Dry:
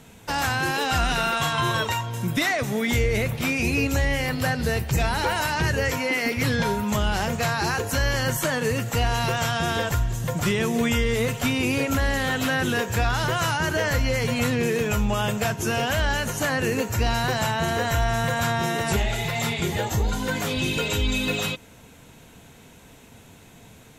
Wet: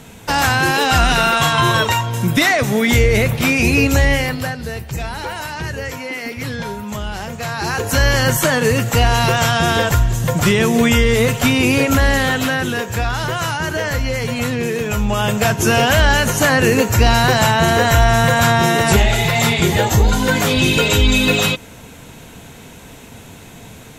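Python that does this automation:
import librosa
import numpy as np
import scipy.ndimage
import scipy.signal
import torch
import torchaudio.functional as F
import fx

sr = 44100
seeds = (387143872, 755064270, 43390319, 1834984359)

y = fx.gain(x, sr, db=fx.line((4.13, 9.0), (4.6, -2.0), (7.36, -2.0), (8.0, 9.0), (12.16, 9.0), (12.72, 3.0), (14.84, 3.0), (15.62, 10.5)))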